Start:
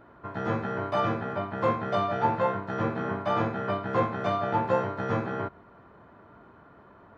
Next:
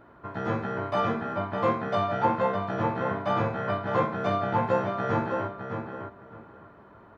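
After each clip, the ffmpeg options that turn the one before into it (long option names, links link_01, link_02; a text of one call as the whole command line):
ffmpeg -i in.wav -filter_complex "[0:a]asplit=2[link_01][link_02];[link_02]adelay=609,lowpass=frequency=3200:poles=1,volume=-6dB,asplit=2[link_03][link_04];[link_04]adelay=609,lowpass=frequency=3200:poles=1,volume=0.2,asplit=2[link_05][link_06];[link_06]adelay=609,lowpass=frequency=3200:poles=1,volume=0.2[link_07];[link_01][link_03][link_05][link_07]amix=inputs=4:normalize=0" out.wav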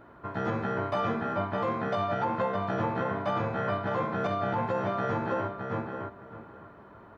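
ffmpeg -i in.wav -af "alimiter=limit=-21dB:level=0:latency=1:release=115,volume=1dB" out.wav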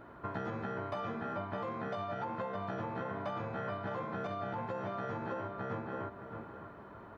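ffmpeg -i in.wav -af "acompressor=threshold=-35dB:ratio=10" out.wav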